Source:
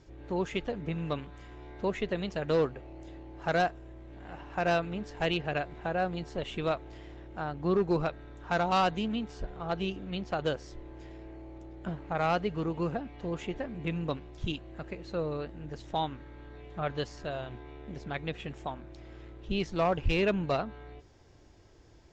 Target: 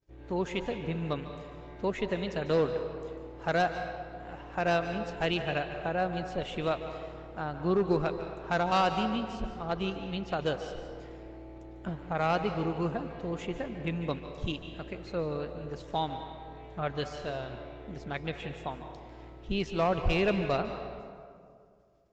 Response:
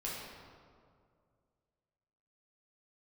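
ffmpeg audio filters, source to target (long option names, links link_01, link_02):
-filter_complex "[0:a]agate=range=-33dB:threshold=-45dB:ratio=3:detection=peak,asplit=2[link_01][link_02];[1:a]atrim=start_sample=2205,lowshelf=frequency=200:gain=-11.5,adelay=146[link_03];[link_02][link_03]afir=irnorm=-1:irlink=0,volume=-9dB[link_04];[link_01][link_04]amix=inputs=2:normalize=0"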